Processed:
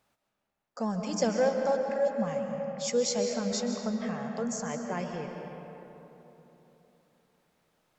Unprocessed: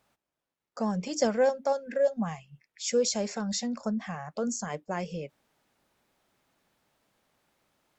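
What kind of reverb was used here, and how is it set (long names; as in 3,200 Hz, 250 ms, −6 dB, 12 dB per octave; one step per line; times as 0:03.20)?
comb and all-pass reverb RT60 3.5 s, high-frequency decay 0.5×, pre-delay 100 ms, DRR 3 dB
level −2 dB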